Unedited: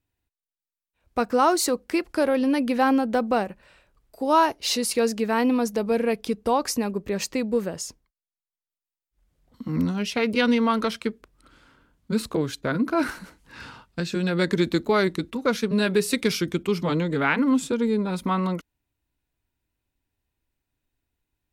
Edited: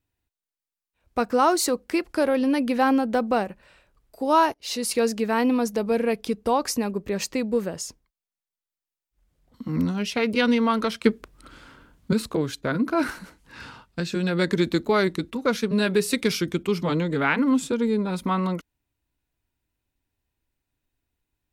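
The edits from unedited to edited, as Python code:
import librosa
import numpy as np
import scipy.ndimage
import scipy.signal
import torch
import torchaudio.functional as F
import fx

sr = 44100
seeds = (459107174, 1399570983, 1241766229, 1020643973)

y = fx.edit(x, sr, fx.fade_in_from(start_s=4.54, length_s=0.37, floor_db=-19.0),
    fx.clip_gain(start_s=11.04, length_s=1.09, db=8.0), tone=tone)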